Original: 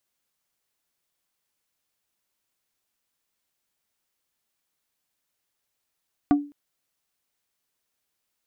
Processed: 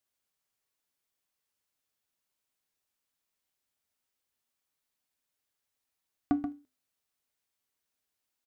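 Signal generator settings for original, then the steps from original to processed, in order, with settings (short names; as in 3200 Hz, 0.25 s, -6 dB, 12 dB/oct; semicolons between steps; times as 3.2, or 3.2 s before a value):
wood hit plate, length 0.21 s, lowest mode 289 Hz, decay 0.34 s, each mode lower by 7 dB, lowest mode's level -12 dB
resonator 86 Hz, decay 0.28 s, harmonics odd, mix 60%; on a send: echo 0.131 s -9 dB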